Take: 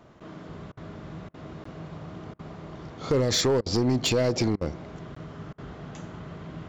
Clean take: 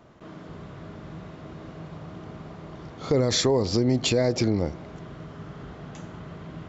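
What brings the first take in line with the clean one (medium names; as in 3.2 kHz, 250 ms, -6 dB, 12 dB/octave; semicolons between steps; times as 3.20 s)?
clip repair -18 dBFS; interpolate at 1.64/5.15 s, 14 ms; interpolate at 0.72/1.29/2.34/3.61/4.56/5.53 s, 50 ms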